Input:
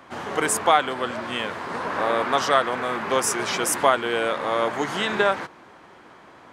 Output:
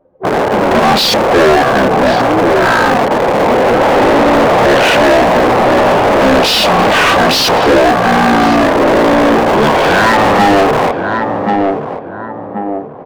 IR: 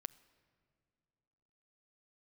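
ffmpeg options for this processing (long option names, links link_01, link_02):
-filter_complex "[0:a]anlmdn=10,asetrate=22050,aresample=44100,asplit=2[link_01][link_02];[link_02]acrusher=bits=4:mix=0:aa=0.000001,volume=-9dB[link_03];[link_01][link_03]amix=inputs=2:normalize=0,asplit=2[link_04][link_05];[link_05]adelay=1080,lowpass=frequency=940:poles=1,volume=-13dB,asplit=2[link_06][link_07];[link_07]adelay=1080,lowpass=frequency=940:poles=1,volume=0.38,asplit=2[link_08][link_09];[link_09]adelay=1080,lowpass=frequency=940:poles=1,volume=0.38,asplit=2[link_10][link_11];[link_11]adelay=1080,lowpass=frequency=940:poles=1,volume=0.38[link_12];[link_04][link_06][link_08][link_10][link_12]amix=inputs=5:normalize=0,asplit=2[link_13][link_14];[link_14]highpass=frequency=720:poles=1,volume=35dB,asoftclip=type=tanh:threshold=-1dB[link_15];[link_13][link_15]amix=inputs=2:normalize=0,lowpass=frequency=3100:poles=1,volume=-6dB"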